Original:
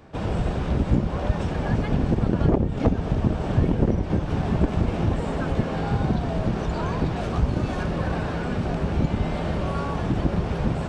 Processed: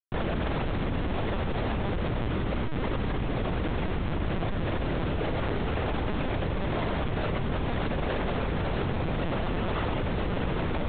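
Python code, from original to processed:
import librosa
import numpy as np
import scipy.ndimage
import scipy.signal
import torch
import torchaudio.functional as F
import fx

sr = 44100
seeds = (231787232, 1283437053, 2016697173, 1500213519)

y = fx.tracing_dist(x, sr, depth_ms=0.2)
y = fx.highpass(y, sr, hz=98.0, slope=6)
y = fx.low_shelf(y, sr, hz=130.0, db=-6.0)
y = fx.rider(y, sr, range_db=10, speed_s=0.5)
y = fx.schmitt(y, sr, flips_db=-31.0)
y = y + 10.0 ** (-10.5 / 20.0) * np.pad(y, (int(365 * sr / 1000.0), 0))[:len(y)]
y = fx.lpc_vocoder(y, sr, seeds[0], excitation='pitch_kept', order=10)
y = fx.env_flatten(y, sr, amount_pct=100)
y = y * librosa.db_to_amplitude(-4.0)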